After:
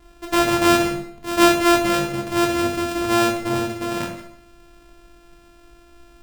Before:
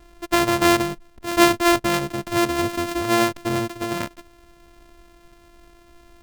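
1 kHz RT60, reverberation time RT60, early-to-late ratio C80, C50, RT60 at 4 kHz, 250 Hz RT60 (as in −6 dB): 0.60 s, 0.65 s, 9.0 dB, 5.5 dB, 0.55 s, 0.75 s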